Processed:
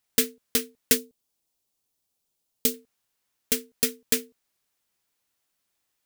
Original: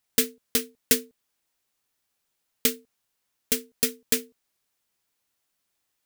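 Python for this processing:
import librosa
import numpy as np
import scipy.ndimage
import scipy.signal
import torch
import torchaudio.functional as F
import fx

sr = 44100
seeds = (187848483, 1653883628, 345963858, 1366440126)

y = fx.peak_eq(x, sr, hz=1700.0, db=-10.5, octaves=1.6, at=(0.97, 2.74))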